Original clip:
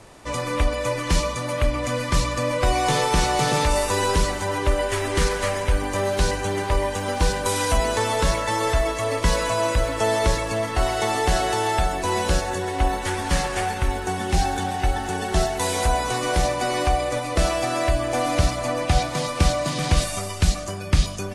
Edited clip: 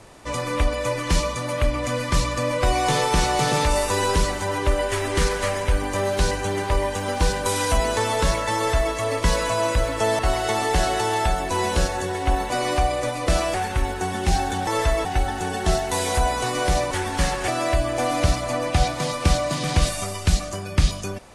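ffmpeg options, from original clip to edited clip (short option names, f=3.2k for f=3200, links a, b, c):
-filter_complex "[0:a]asplit=8[a][b][c][d][e][f][g][h];[a]atrim=end=10.192[i];[b]atrim=start=10.718:end=13.032[j];[c]atrim=start=16.588:end=17.632[k];[d]atrim=start=13.598:end=14.732[l];[e]atrim=start=8.548:end=8.932[m];[f]atrim=start=14.728:end=16.592[n];[g]atrim=start=13.028:end=13.602[o];[h]atrim=start=17.628[p];[i][j]acrossfade=d=0.004:c1=hsin:c2=hsin[q];[q][k]acrossfade=d=0.004:c1=hsin:c2=hsin[r];[r][l]acrossfade=d=0.004:c1=hsin:c2=hsin[s];[s][m]acrossfade=d=0.004:c1=hsin:c2=hsin[t];[t][n]acrossfade=d=0.004:c1=hsin:c2=hsin[u];[u][o]acrossfade=d=0.004:c1=hsin:c2=hsin[v];[v][p]acrossfade=d=0.004:c1=hsin:c2=hsin"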